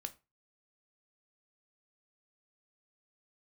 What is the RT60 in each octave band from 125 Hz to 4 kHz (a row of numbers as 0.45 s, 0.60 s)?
0.35 s, 0.25 s, 0.25 s, 0.30 s, 0.25 s, 0.20 s